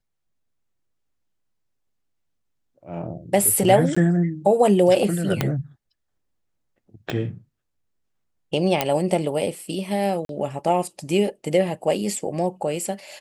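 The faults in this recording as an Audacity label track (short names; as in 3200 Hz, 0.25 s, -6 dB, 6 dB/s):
3.950000	3.960000	gap 15 ms
5.410000	5.410000	pop -6 dBFS
7.100000	7.100000	pop -14 dBFS
8.810000	8.810000	pop -4 dBFS
10.250000	10.290000	gap 42 ms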